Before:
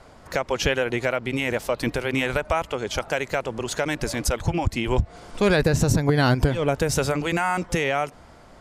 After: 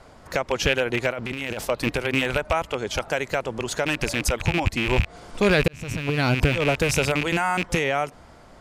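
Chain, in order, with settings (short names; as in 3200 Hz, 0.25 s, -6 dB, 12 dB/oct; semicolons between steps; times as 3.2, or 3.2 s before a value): rattling part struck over -30 dBFS, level -14 dBFS; 1.12–1.65 negative-ratio compressor -30 dBFS, ratio -1; 5.68–6.47 fade in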